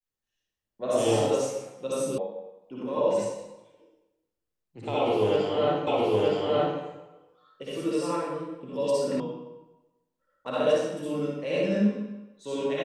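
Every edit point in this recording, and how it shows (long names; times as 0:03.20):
0:02.18: cut off before it has died away
0:05.87: the same again, the last 0.92 s
0:09.20: cut off before it has died away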